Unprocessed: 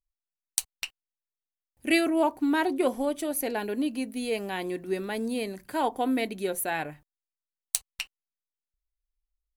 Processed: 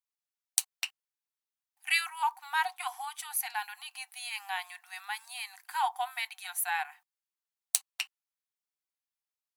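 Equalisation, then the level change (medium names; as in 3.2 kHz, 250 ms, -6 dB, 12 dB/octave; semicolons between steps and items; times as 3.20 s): brick-wall FIR high-pass 720 Hz; 0.0 dB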